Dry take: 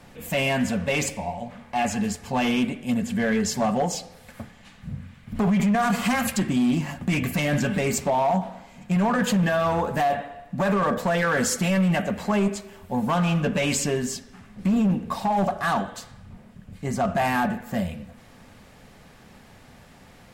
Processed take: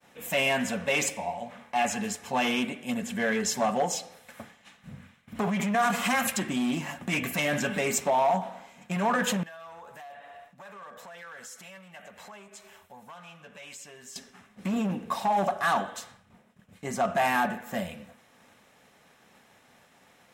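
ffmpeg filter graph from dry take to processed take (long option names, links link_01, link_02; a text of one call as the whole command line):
ffmpeg -i in.wav -filter_complex "[0:a]asettb=1/sr,asplit=3[link_01][link_02][link_03];[link_01]atrim=end=9.434[link_04];[link_02]atrim=start=9.43:end=14.16,asetpts=PTS-STARTPTS,afade=type=in:duration=0.004:curve=qsin,afade=type=out:start_time=4.726:duration=0.004:curve=qsin,equalizer=frequency=270:width=0.77:gain=-10,acompressor=threshold=-41dB:ratio=10:attack=3.2:release=140:knee=1:detection=peak[link_05];[link_03]atrim=start=14.156[link_06];[link_04][link_05]acrossfade=duration=0.004:curve1=hsin:curve2=qsin[link_07];[link_07][link_06]acrossfade=duration=0.004:curve1=qsin:curve2=hsin,highpass=frequency=480:poles=1,bandreject=frequency=4600:width=8.5,agate=range=-33dB:threshold=-48dB:ratio=3:detection=peak" out.wav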